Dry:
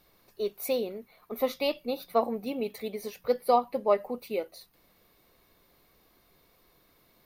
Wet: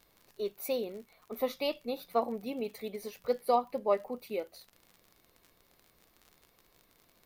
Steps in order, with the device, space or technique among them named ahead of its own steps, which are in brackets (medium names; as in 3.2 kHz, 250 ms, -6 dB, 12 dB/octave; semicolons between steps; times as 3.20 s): vinyl LP (wow and flutter 21 cents; crackle 51 per s -39 dBFS; pink noise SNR 42 dB); trim -4 dB